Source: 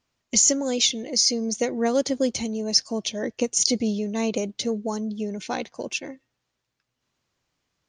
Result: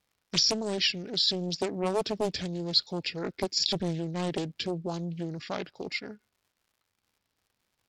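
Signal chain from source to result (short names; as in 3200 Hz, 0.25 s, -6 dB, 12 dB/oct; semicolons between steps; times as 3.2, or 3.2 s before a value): crackle 210/s -54 dBFS; pitch shift -4 st; Doppler distortion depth 0.79 ms; gain -5 dB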